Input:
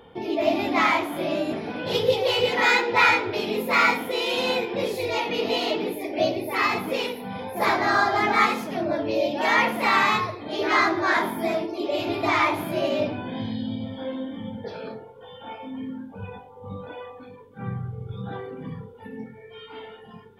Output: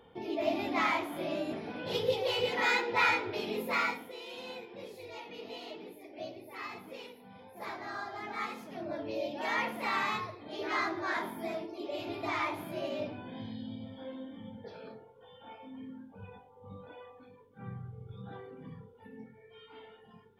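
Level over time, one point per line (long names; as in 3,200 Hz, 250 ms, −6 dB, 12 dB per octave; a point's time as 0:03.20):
0:03.69 −9 dB
0:04.18 −19.5 dB
0:08.23 −19.5 dB
0:08.99 −12 dB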